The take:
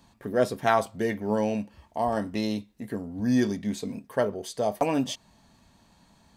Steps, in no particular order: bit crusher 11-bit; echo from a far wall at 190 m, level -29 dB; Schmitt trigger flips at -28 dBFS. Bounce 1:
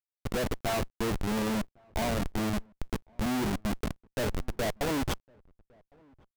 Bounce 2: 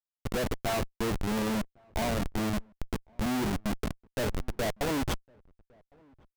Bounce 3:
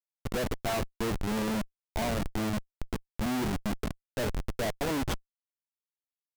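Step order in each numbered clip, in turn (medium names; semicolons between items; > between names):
Schmitt trigger > bit crusher > echo from a far wall; bit crusher > Schmitt trigger > echo from a far wall; bit crusher > echo from a far wall > Schmitt trigger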